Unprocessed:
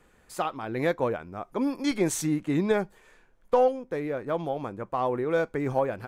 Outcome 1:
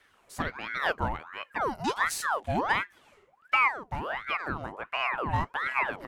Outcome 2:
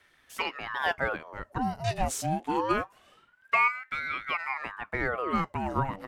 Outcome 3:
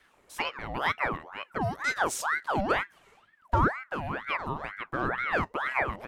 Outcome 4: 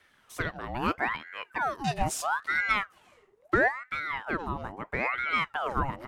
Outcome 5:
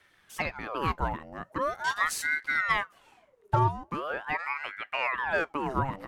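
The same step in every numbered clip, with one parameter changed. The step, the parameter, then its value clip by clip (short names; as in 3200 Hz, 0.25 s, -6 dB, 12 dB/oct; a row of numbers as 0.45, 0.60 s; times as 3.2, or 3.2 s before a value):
ring modulator with a swept carrier, at: 1.4, 0.25, 2.1, 0.76, 0.42 Hz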